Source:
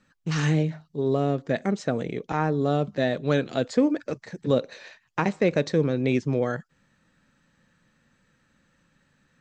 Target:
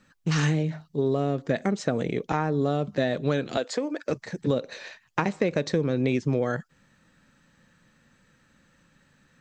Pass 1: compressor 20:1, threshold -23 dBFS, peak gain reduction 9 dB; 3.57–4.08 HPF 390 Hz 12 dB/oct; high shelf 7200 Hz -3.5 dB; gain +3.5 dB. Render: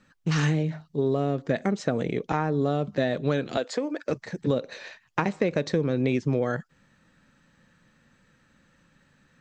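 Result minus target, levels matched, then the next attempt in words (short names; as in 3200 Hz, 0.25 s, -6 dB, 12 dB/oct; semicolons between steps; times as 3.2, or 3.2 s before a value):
8000 Hz band -2.5 dB
compressor 20:1, threshold -23 dBFS, peak gain reduction 9 dB; 3.57–4.08 HPF 390 Hz 12 dB/oct; high shelf 7200 Hz +2.5 dB; gain +3.5 dB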